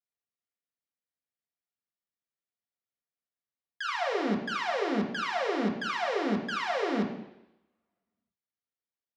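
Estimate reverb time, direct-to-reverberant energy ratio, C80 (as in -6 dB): 0.85 s, -0.5 dB, 9.5 dB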